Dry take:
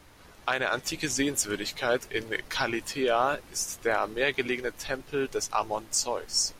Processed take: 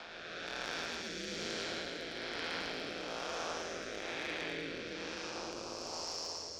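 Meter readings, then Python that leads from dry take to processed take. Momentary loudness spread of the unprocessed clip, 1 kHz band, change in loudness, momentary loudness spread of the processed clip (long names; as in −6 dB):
5 LU, −13.0 dB, −11.0 dB, 4 LU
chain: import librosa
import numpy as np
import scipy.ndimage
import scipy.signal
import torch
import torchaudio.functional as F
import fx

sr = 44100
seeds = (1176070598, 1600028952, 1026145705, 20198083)

p1 = fx.spec_blur(x, sr, span_ms=823.0)
p2 = fx.low_shelf(p1, sr, hz=260.0, db=-11.0)
p3 = p2 * np.sin(2.0 * np.pi * 83.0 * np.arange(len(p2)) / sr)
p4 = fx.ladder_lowpass(p3, sr, hz=5500.0, resonance_pct=50)
p5 = 10.0 ** (-39.5 / 20.0) * (np.abs((p4 / 10.0 ** (-39.5 / 20.0) + 3.0) % 4.0 - 2.0) - 1.0)
p6 = p4 + (p5 * 10.0 ** (-8.0 / 20.0))
p7 = fx.cheby_harmonics(p6, sr, harmonics=(2, 4, 5), levels_db=(-7, -17, -27), full_scale_db=-29.5)
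p8 = fx.rotary(p7, sr, hz=1.1)
p9 = p8 + fx.echo_single(p8, sr, ms=110, db=-5.5, dry=0)
p10 = fx.band_squash(p9, sr, depth_pct=40)
y = p10 * 10.0 ** (5.5 / 20.0)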